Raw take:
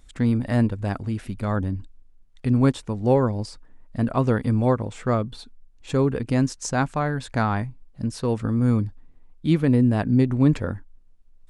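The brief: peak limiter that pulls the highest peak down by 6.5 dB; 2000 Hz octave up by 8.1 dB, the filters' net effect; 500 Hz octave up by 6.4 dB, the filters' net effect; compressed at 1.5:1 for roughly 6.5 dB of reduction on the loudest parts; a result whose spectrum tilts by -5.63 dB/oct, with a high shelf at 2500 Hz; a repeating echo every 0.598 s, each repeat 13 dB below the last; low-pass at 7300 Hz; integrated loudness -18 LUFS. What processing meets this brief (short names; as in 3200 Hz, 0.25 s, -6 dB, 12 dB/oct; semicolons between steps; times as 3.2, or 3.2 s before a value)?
LPF 7300 Hz; bell 500 Hz +7 dB; bell 2000 Hz +8.5 dB; high shelf 2500 Hz +4.5 dB; compressor 1.5:1, threshold -28 dBFS; limiter -16 dBFS; feedback echo 0.598 s, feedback 22%, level -13 dB; gain +9 dB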